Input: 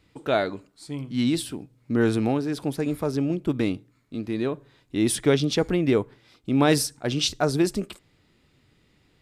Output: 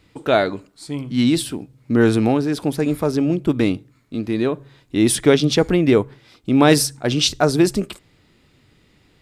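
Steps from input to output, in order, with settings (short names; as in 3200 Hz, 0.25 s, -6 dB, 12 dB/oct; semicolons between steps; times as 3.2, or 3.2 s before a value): de-hum 68.46 Hz, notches 2; gain +6.5 dB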